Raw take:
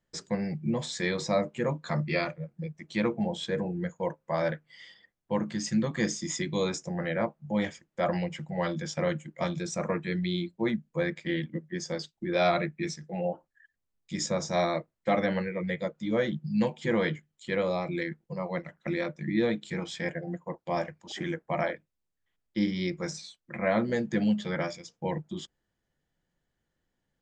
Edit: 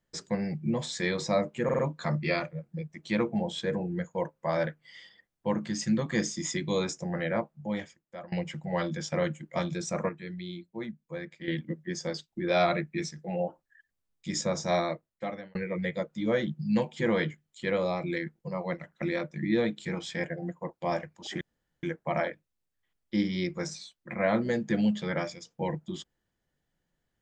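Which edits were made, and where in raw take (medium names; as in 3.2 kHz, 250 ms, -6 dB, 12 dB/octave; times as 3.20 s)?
1.64 s: stutter 0.05 s, 4 plays
7.15–8.17 s: fade out, to -23.5 dB
9.94–11.33 s: gain -9 dB
14.59–15.40 s: fade out
21.26 s: insert room tone 0.42 s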